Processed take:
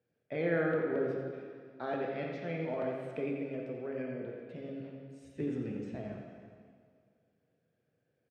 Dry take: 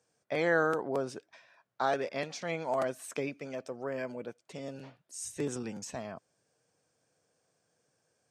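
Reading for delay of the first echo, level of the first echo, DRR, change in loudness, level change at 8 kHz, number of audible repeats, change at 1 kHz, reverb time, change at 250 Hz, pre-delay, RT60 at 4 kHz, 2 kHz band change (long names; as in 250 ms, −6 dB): 87 ms, −9.0 dB, −1.0 dB, −2.5 dB, below −25 dB, 1, −8.0 dB, 2.0 s, +2.0 dB, 7 ms, 1.9 s, −5.5 dB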